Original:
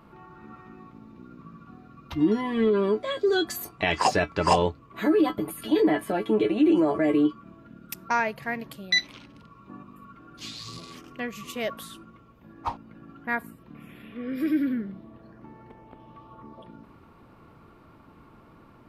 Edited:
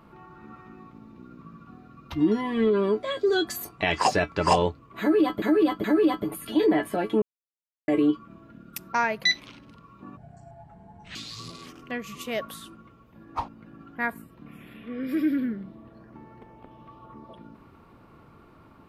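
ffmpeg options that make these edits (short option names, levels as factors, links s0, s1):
-filter_complex "[0:a]asplit=8[s0][s1][s2][s3][s4][s5][s6][s7];[s0]atrim=end=5.422[s8];[s1]atrim=start=4.998:end=5.422[s9];[s2]atrim=start=4.998:end=6.38,asetpts=PTS-STARTPTS,afade=t=out:st=1.378:d=0.004:c=hsin[s10];[s3]atrim=start=6.38:end=7.04,asetpts=PTS-STARTPTS,volume=0[s11];[s4]atrim=start=7.04:end=8.402,asetpts=PTS-STARTPTS,afade=t=in:d=0.004:c=hsin[s12];[s5]atrim=start=8.908:end=9.844[s13];[s6]atrim=start=9.84:end=10.44,asetpts=PTS-STARTPTS,asetrate=26901,aresample=44100,atrim=end_sample=43377,asetpts=PTS-STARTPTS[s14];[s7]atrim=start=10.436[s15];[s8][s9]acrossfade=d=0.004:c1=hsin:c2=hsin[s16];[s10][s11][s12]concat=n=3:v=0:a=1[s17];[s16][s17]acrossfade=d=0.004:c1=hsin:c2=hsin[s18];[s18][s13]acrossfade=d=0.004:c1=hsin:c2=hsin[s19];[s19][s14]acrossfade=d=0.004:c1=hsin:c2=hsin[s20];[s20][s15]acrossfade=d=0.004:c1=hsin:c2=hsin"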